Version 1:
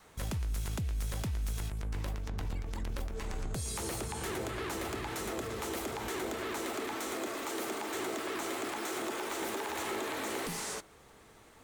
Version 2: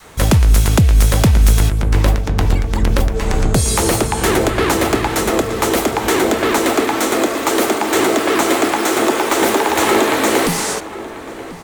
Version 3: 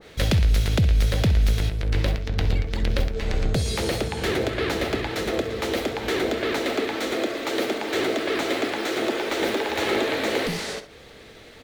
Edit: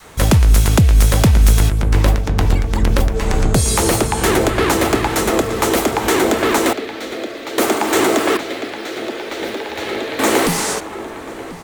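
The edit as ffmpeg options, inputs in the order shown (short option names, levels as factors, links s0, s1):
-filter_complex "[2:a]asplit=2[s0][s1];[1:a]asplit=3[s2][s3][s4];[s2]atrim=end=6.732[s5];[s0]atrim=start=6.728:end=7.582[s6];[s3]atrim=start=7.578:end=8.372[s7];[s1]atrim=start=8.368:end=10.192[s8];[s4]atrim=start=10.188[s9];[s5][s6]acrossfade=d=0.004:c1=hsin:c2=hsin[s10];[s10][s7]acrossfade=d=0.004:c1=hsin:c2=hsin[s11];[s11][s8]acrossfade=d=0.004:c1=hsin:c2=hsin[s12];[s12][s9]acrossfade=d=0.004:c1=hsin:c2=hsin"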